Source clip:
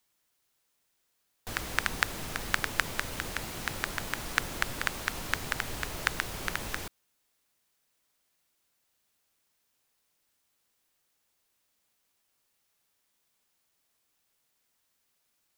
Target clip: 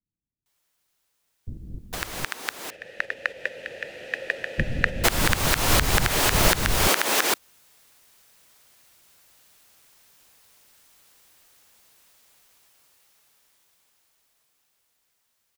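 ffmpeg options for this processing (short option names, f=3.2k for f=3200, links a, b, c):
-filter_complex "[0:a]asettb=1/sr,asplit=3[a][b][c];[a]atrim=end=2.244[d];[b]atrim=start=2.24:end=4.58,asetpts=PTS-STARTPTS,afade=t=in:d=0.004:c=qsin,afade=t=out:st=2.336:d=0.004:c=qsin,asplit=3[e][f][g];[e]bandpass=f=530:t=q:w=8,volume=0dB[h];[f]bandpass=f=1.84k:t=q:w=8,volume=-6dB[i];[g]bandpass=f=2.48k:t=q:w=8,volume=-9dB[j];[h][i][j]amix=inputs=3:normalize=0[k];[c]atrim=start=4.576[l];[d][k]acrossfade=d=0.004:c1=hsin:c2=qsin[m];[m][l]acrossfade=d=0.004:c1=qsin:c2=hsin,agate=range=-9dB:threshold=-43dB:ratio=16:detection=peak,acompressor=threshold=-40dB:ratio=8,aeval=exprs='clip(val(0),-1,0.0944)':c=same,dynaudnorm=f=320:g=21:m=16.5dB,acrossover=split=270[n][o];[o]adelay=460[p];[n][p]amix=inputs=2:normalize=0,alimiter=level_in=12dB:limit=-1dB:release=50:level=0:latency=1,volume=-1dB"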